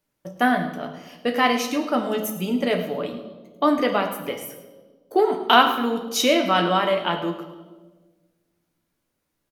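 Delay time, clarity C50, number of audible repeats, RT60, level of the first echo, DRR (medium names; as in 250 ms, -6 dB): 108 ms, 8.0 dB, 1, 1.4 s, -14.0 dB, 4.0 dB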